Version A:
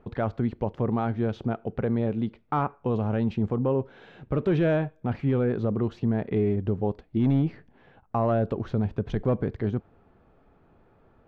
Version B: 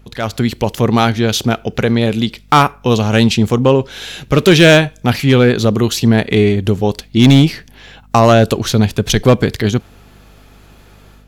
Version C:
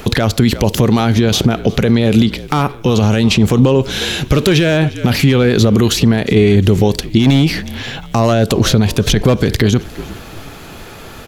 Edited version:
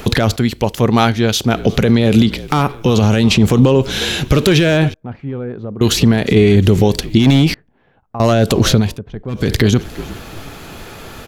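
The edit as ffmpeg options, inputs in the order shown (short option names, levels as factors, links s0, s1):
-filter_complex "[0:a]asplit=3[s0][s1][s2];[2:a]asplit=5[s3][s4][s5][s6][s7];[s3]atrim=end=0.362[s8];[1:a]atrim=start=0.358:end=1.542[s9];[s4]atrim=start=1.538:end=4.942[s10];[s0]atrim=start=4.938:end=5.812[s11];[s5]atrim=start=5.808:end=7.542[s12];[s1]atrim=start=7.538:end=8.202[s13];[s6]atrim=start=8.198:end=9[s14];[s2]atrim=start=8.76:end=9.51[s15];[s7]atrim=start=9.27[s16];[s8][s9]acrossfade=d=0.004:c1=hsin:c2=hsin[s17];[s17][s10]acrossfade=d=0.004:c1=hsin:c2=hsin[s18];[s18][s11]acrossfade=d=0.004:c1=hsin:c2=hsin[s19];[s19][s12]acrossfade=d=0.004:c1=hsin:c2=hsin[s20];[s20][s13]acrossfade=d=0.004:c1=hsin:c2=hsin[s21];[s21][s14]acrossfade=d=0.004:c1=hsin:c2=hsin[s22];[s22][s15]acrossfade=d=0.24:c1=tri:c2=tri[s23];[s23][s16]acrossfade=d=0.24:c1=tri:c2=tri"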